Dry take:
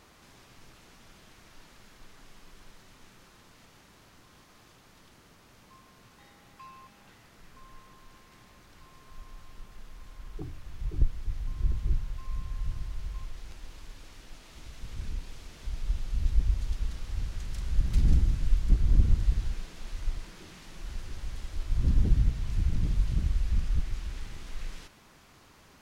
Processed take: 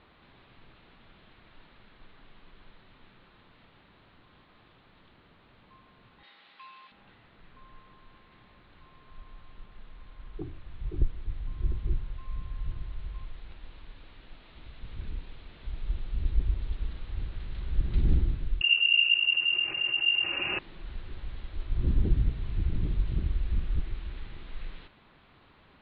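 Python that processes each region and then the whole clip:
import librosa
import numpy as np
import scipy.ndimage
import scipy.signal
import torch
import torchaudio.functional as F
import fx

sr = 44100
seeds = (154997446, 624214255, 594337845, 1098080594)

y = fx.chain(x, sr, fx.highpass(hz=150.0, slope=24),
    fx.tilt_eq(slope=4.5), at=(6.23, 6.92))
y = fx.chain(y, sr, fx.comb(ms=4.5, depth=0.48),
    fx.freq_invert(carrier_hz=2800),
    fx.env_flatten(amount_pct=50), at=(18.61, 20.59))
y = fx.dynamic_eq(y, sr, hz=360.0, q=2.6, threshold_db=-58.0, ratio=4.0, max_db=8)
y = fx.rider(y, sr, range_db=4, speed_s=0.5)
y = scipy.signal.sosfilt(scipy.signal.butter(12, 4100.0, 'lowpass', fs=sr, output='sos'), y)
y = y * librosa.db_to_amplitude(-5.5)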